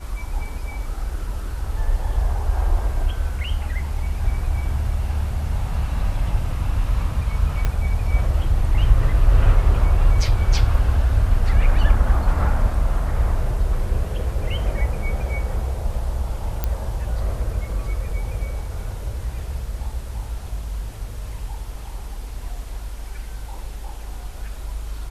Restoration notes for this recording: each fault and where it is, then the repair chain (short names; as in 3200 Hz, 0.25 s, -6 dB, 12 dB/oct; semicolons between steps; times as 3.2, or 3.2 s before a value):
7.65 pop -9 dBFS
16.64 pop -9 dBFS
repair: de-click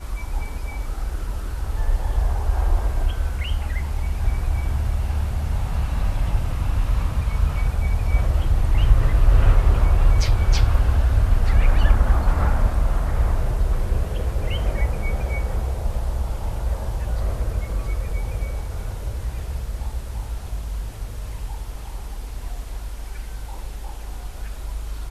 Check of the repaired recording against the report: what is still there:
7.65 pop